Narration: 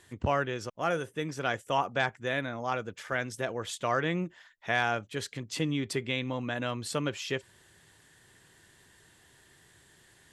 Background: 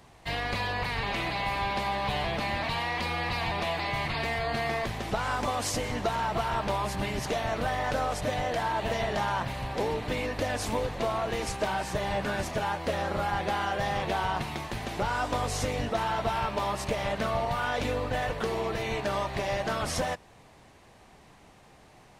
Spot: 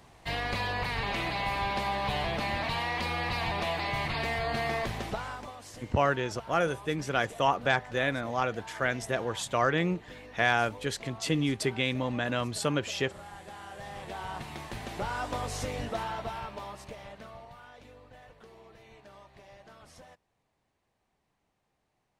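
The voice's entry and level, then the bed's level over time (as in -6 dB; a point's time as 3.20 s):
5.70 s, +2.5 dB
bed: 5.01 s -1 dB
5.60 s -17 dB
13.49 s -17 dB
14.73 s -4.5 dB
15.95 s -4.5 dB
17.81 s -23 dB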